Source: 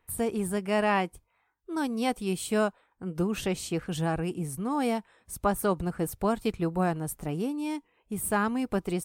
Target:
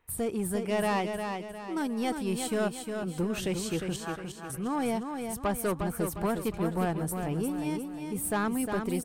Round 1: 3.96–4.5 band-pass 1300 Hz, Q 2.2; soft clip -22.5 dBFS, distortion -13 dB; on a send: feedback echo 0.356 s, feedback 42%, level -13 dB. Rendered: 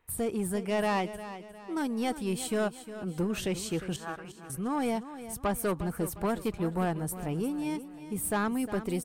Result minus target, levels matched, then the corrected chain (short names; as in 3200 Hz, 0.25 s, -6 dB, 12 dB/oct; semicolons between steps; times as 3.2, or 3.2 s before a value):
echo-to-direct -7 dB
3.96–4.5 band-pass 1300 Hz, Q 2.2; soft clip -22.5 dBFS, distortion -13 dB; on a send: feedback echo 0.356 s, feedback 42%, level -6 dB